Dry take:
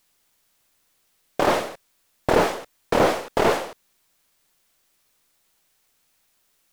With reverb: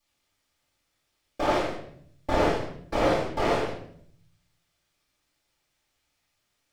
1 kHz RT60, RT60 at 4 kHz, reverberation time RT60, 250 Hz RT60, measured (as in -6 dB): 0.55 s, 0.50 s, 0.60 s, 1.0 s